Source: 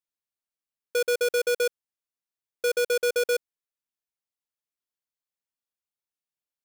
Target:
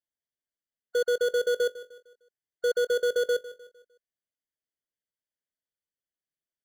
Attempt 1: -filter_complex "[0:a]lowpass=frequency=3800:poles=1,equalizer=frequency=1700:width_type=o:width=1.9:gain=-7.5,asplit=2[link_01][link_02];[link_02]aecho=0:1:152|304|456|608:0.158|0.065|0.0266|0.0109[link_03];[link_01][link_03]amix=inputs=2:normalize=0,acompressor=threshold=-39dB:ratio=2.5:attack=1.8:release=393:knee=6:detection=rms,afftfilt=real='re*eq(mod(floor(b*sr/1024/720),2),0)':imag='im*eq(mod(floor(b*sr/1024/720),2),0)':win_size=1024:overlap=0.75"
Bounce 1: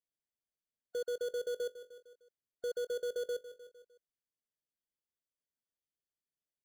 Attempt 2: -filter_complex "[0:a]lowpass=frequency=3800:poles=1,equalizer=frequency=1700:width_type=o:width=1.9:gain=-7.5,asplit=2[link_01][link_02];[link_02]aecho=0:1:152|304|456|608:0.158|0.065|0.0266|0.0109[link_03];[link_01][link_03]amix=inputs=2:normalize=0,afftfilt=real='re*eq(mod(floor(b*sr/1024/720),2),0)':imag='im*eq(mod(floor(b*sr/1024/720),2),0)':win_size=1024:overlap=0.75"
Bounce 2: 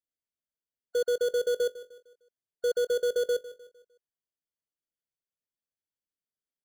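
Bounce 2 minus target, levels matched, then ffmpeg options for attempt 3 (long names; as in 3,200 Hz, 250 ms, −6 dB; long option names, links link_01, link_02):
2,000 Hz band −5.5 dB
-filter_complex "[0:a]lowpass=frequency=3800:poles=1,asplit=2[link_01][link_02];[link_02]aecho=0:1:152|304|456|608:0.158|0.065|0.0266|0.0109[link_03];[link_01][link_03]amix=inputs=2:normalize=0,afftfilt=real='re*eq(mod(floor(b*sr/1024/720),2),0)':imag='im*eq(mod(floor(b*sr/1024/720),2),0)':win_size=1024:overlap=0.75"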